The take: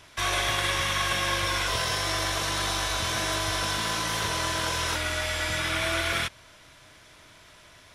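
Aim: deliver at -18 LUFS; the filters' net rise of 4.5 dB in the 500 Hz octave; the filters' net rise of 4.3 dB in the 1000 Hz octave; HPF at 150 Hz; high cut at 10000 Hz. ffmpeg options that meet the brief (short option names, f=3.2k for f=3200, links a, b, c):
-af "highpass=150,lowpass=10k,equalizer=f=500:t=o:g=4.5,equalizer=f=1k:t=o:g=4,volume=7dB"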